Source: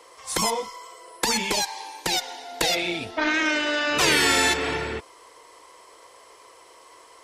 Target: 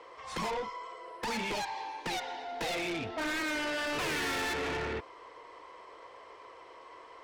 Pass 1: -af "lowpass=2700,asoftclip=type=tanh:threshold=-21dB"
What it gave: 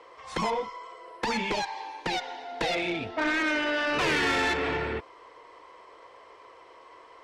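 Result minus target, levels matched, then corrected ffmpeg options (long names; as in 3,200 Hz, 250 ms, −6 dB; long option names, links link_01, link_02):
soft clipping: distortion −8 dB
-af "lowpass=2700,asoftclip=type=tanh:threshold=-31.5dB"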